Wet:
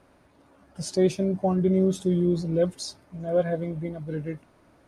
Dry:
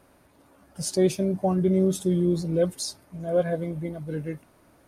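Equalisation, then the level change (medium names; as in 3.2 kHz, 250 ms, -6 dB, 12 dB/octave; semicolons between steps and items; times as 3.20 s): distance through air 56 m; 0.0 dB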